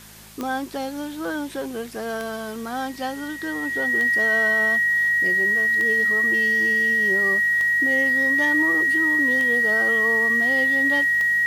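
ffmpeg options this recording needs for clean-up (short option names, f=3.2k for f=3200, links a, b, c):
-af "adeclick=t=4,bandreject=f=53.1:t=h:w=4,bandreject=f=106.2:t=h:w=4,bandreject=f=159.3:t=h:w=4,bandreject=f=212.4:t=h:w=4,bandreject=f=1.9k:w=30,afwtdn=0.0056"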